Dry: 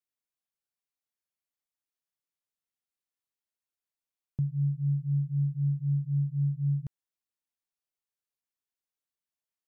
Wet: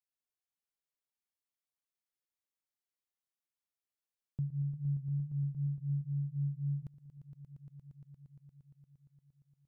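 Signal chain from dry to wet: echo with a slow build-up 116 ms, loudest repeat 5, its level -12 dB; trim -6.5 dB

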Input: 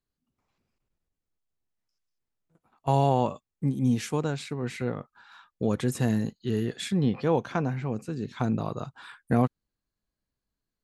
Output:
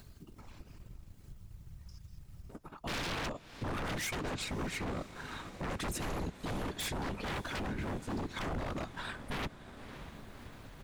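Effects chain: painted sound rise, 3.71–4.15 s, 1.1–2.5 kHz -38 dBFS; in parallel at 0 dB: compression, threshold -33 dBFS, peak gain reduction 15 dB; on the sum: comb 3.2 ms, depth 85%; whisper effect; wavefolder -26.5 dBFS; upward compressor, threshold -37 dBFS; echo that smears into a reverb 591 ms, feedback 68%, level -15 dB; transient shaper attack +3 dB, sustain -4 dB; bass shelf 190 Hz +9.5 dB; peak limiter -25 dBFS, peak gain reduction 9.5 dB; trim -4.5 dB

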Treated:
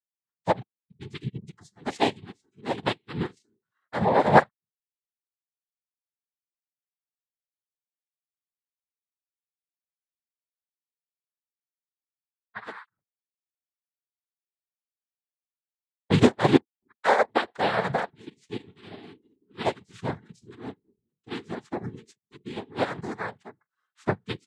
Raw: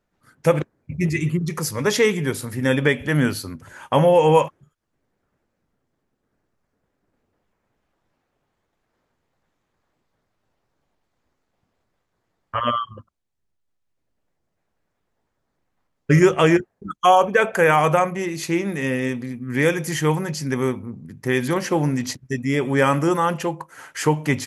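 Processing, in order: noise-vocoded speech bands 6; spectral noise reduction 12 dB; upward expansion 2.5:1, over -33 dBFS

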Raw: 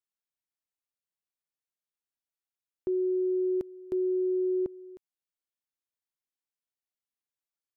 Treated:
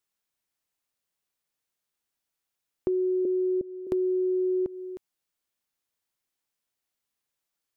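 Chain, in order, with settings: 3.25–3.87 s: elliptic low-pass 590 Hz; compression 5:1, threshold -34 dBFS, peak gain reduction 7 dB; trim +9 dB

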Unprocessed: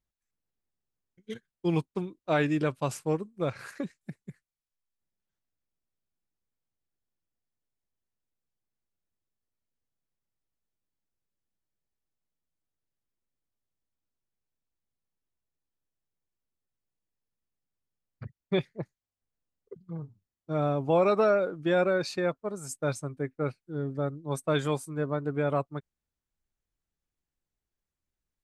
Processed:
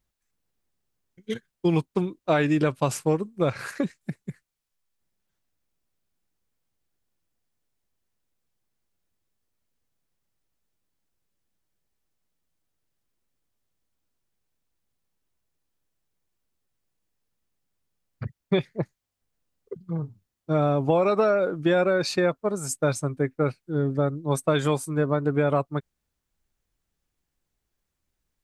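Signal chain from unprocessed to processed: compression, threshold -26 dBFS, peak gain reduction 7.5 dB; trim +8.5 dB

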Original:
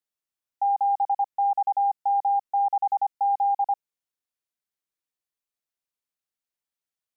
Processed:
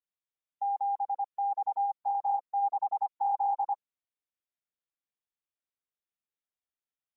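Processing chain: 1.51–1.92 s: peaking EQ 500 Hz +5.5 dB 0.48 oct; trim -7.5 dB; AAC 16 kbps 16 kHz

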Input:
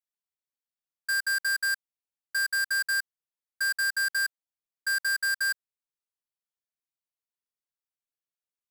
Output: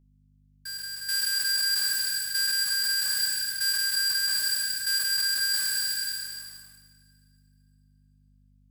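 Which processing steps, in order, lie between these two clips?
spectral sustain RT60 2.45 s; inverse Chebyshev high-pass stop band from 400 Hz, stop band 80 dB; waveshaping leveller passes 3; gain riding within 3 dB 0.5 s; hum 50 Hz, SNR 30 dB; reverse echo 433 ms -10 dB; two-slope reverb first 0.45 s, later 2.6 s, from -15 dB, DRR 7.5 dB

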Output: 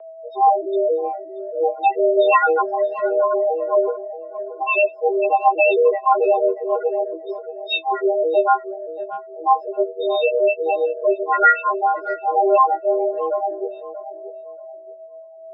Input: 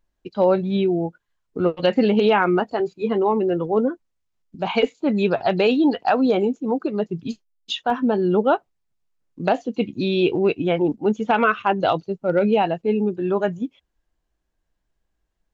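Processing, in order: partials quantised in pitch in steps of 6 st; loudest bins only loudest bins 4; whistle 480 Hz -38 dBFS; rotary cabinet horn 8 Hz, later 0.65 Hz, at 7.45 s; mistuned SSB +170 Hz 210–3200 Hz; on a send: tape echo 629 ms, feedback 28%, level -11 dB, low-pass 1.1 kHz; on the sum: trim +4.5 dB

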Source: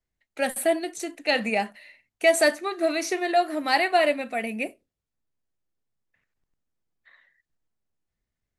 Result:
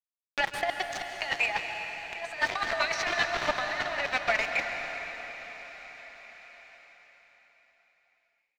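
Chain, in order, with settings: Doppler pass-by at 2.74 s, 16 m/s, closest 17 m; inverse Chebyshev high-pass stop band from 310 Hz, stop band 50 dB; band-stop 2.7 kHz, Q 19; on a send: frequency-shifting echo 329 ms, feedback 59%, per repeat +41 Hz, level -23.5 dB; on the sum: waveshaping leveller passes 3; small samples zeroed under -27 dBFS; compressor with a negative ratio -26 dBFS, ratio -0.5; distance through air 190 m; plate-style reverb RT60 4.7 s, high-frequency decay 0.95×, pre-delay 120 ms, DRR 4 dB; tape noise reduction on one side only encoder only

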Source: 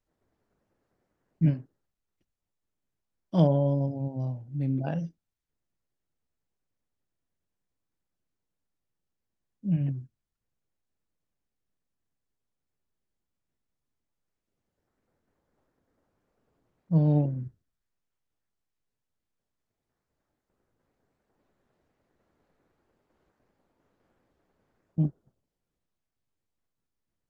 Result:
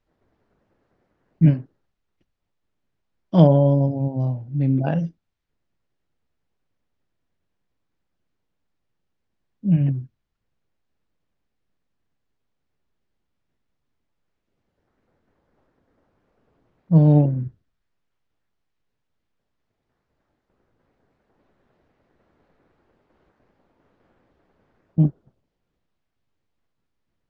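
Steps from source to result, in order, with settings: low-pass 4.1 kHz 12 dB/octave; trim +8.5 dB

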